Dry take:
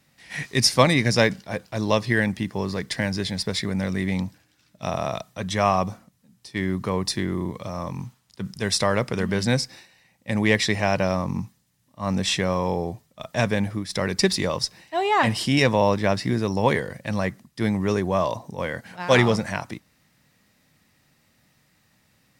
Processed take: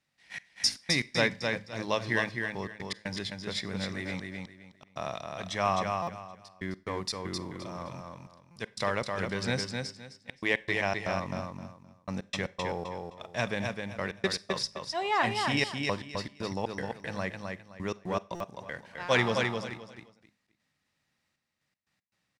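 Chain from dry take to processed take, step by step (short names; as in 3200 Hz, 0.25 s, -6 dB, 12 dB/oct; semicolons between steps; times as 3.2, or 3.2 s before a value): G.711 law mismatch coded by A; tilt shelf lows -3.5 dB, about 690 Hz; de-hum 52.99 Hz, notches 5; step gate "xxx..x.x.xx.xxx" 118 bpm -60 dB; air absorption 52 m; on a send: feedback echo 0.26 s, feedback 24%, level -4.5 dB; on the sum: Schroeder reverb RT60 0.39 s, combs from 31 ms, DRR 20 dB; stuck buffer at 6.02/8.51/18.35, samples 256, times 8; gain -7.5 dB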